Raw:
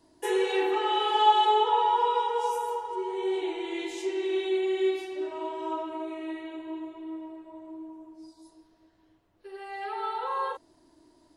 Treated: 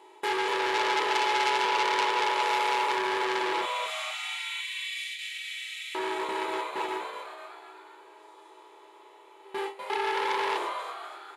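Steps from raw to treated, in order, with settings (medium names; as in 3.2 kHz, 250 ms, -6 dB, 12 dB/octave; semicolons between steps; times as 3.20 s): spectral levelling over time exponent 0.2; gate with hold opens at -13 dBFS; 3.61–5.95 s: steep high-pass 1.9 kHz 48 dB/octave; frequency-shifting echo 246 ms, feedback 49%, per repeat +130 Hz, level -7.5 dB; reverberation, pre-delay 3 ms, DRR 3 dB; transformer saturation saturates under 3.6 kHz; trim -7 dB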